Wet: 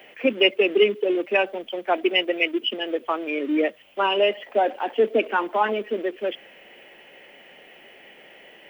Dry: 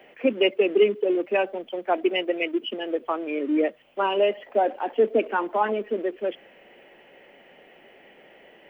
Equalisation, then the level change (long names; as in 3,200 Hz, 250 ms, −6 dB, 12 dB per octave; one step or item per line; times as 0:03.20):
high-shelf EQ 2,200 Hz +12 dB
0.0 dB